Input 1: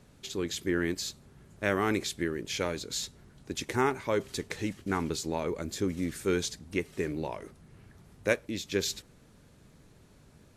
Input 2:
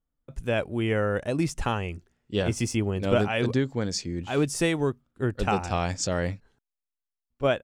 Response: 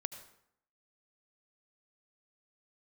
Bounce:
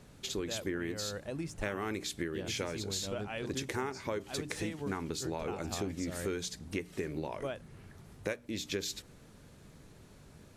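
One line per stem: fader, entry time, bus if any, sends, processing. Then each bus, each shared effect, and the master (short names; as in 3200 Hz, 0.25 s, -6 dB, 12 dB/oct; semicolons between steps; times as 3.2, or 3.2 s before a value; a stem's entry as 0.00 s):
+2.5 dB, 0.00 s, no send, dry
-11.0 dB, 0.00 s, no send, dry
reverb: off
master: notches 60/120/180/240/300 Hz; compressor 6:1, threshold -33 dBFS, peak gain reduction 14.5 dB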